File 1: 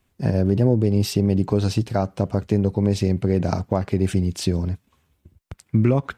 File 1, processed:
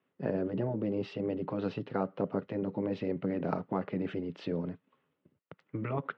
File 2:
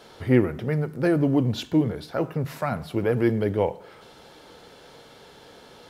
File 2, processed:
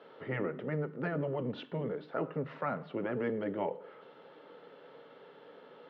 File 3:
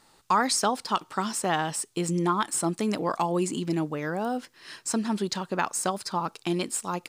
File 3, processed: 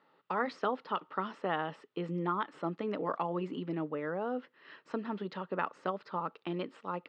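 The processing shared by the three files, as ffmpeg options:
-af "highpass=f=200:w=0.5412,highpass=f=200:w=1.3066,equalizer=f=220:t=q:w=4:g=-10,equalizer=f=340:t=q:w=4:g=-8,equalizer=f=730:t=q:w=4:g=-9,equalizer=f=1k:t=q:w=4:g=-6,equalizer=f=1.6k:t=q:w=4:g=-7,equalizer=f=2.3k:t=q:w=4:g=-9,lowpass=f=2.4k:w=0.5412,lowpass=f=2.4k:w=1.3066,afftfilt=real='re*lt(hypot(re,im),0.282)':imag='im*lt(hypot(re,im),0.282)':win_size=1024:overlap=0.75"

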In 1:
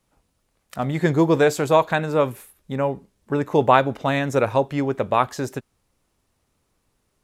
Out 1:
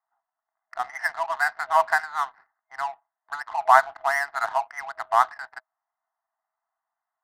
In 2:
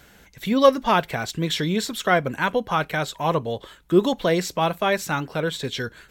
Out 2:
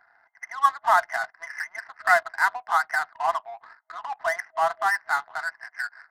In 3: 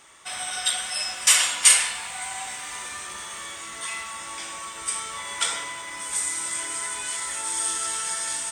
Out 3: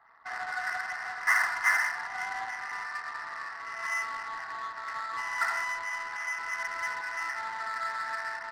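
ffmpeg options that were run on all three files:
-af "afftfilt=real='re*between(b*sr/4096,640,2100)':imag='im*between(b*sr/4096,640,2100)':win_size=4096:overlap=0.75,crystalizer=i=7.5:c=0,adynamicsmooth=sensitivity=6:basefreq=830,volume=-2.5dB"

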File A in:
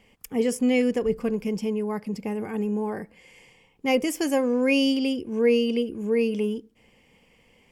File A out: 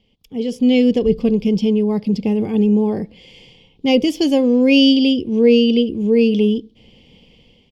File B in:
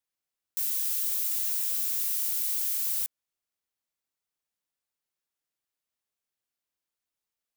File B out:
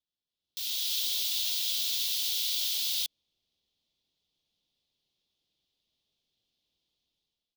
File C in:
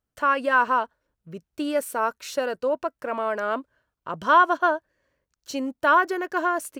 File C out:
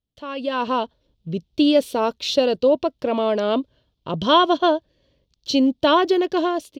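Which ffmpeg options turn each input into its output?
-af "firequalizer=gain_entry='entry(150,0);entry(1500,-21);entry(3400,5);entry(7900,-19)':delay=0.05:min_phase=1,dynaudnorm=f=240:g=5:m=14dB"

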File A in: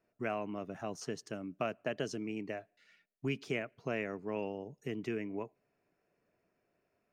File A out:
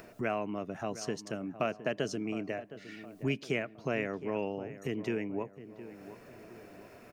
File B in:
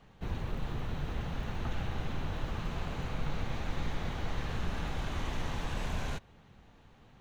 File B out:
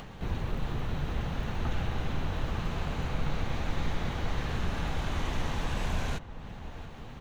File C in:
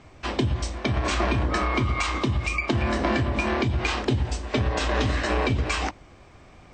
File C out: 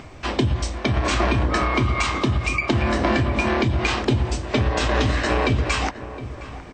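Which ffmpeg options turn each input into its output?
-filter_complex "[0:a]acompressor=mode=upward:threshold=-38dB:ratio=2.5,asplit=2[a][b];[b]adelay=714,lowpass=f=1.5k:p=1,volume=-13.5dB,asplit=2[c][d];[d]adelay=714,lowpass=f=1.5k:p=1,volume=0.49,asplit=2[e][f];[f]adelay=714,lowpass=f=1.5k:p=1,volume=0.49,asplit=2[g][h];[h]adelay=714,lowpass=f=1.5k:p=1,volume=0.49,asplit=2[i][j];[j]adelay=714,lowpass=f=1.5k:p=1,volume=0.49[k];[c][e][g][i][k]amix=inputs=5:normalize=0[l];[a][l]amix=inputs=2:normalize=0,volume=3.5dB"

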